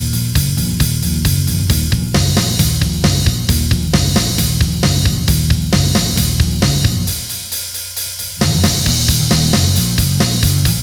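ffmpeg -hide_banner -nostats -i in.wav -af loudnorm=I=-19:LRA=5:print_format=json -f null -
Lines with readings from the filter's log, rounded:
"input_i" : "-14.3",
"input_tp" : "-1.4",
"input_lra" : "1.7",
"input_thresh" : "-24.3",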